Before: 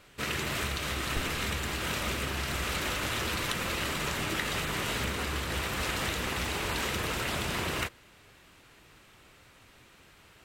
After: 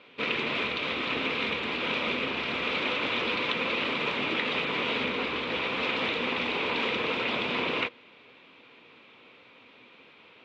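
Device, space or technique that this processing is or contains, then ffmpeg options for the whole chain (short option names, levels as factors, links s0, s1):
kitchen radio: -af "highpass=200,equalizer=f=250:t=q:w=4:g=9,equalizer=f=480:t=q:w=4:g=9,equalizer=f=1000:t=q:w=4:g=5,equalizer=f=1700:t=q:w=4:g=-4,equalizer=f=2400:t=q:w=4:g=9,equalizer=f=3500:t=q:w=4:g=6,lowpass=f=3900:w=0.5412,lowpass=f=3900:w=1.3066"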